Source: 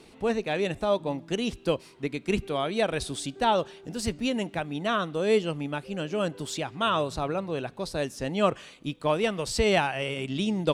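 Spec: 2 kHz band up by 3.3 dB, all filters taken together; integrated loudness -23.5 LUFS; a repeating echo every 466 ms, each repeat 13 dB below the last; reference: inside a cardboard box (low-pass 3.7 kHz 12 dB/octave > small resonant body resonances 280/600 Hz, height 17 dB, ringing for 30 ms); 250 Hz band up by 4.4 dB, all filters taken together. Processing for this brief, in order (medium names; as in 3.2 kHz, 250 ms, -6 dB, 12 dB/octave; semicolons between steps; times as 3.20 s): low-pass 3.7 kHz 12 dB/octave; peaking EQ 250 Hz +5.5 dB; peaking EQ 2 kHz +5 dB; feedback delay 466 ms, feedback 22%, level -13 dB; small resonant body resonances 280/600 Hz, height 17 dB, ringing for 30 ms; trim -8.5 dB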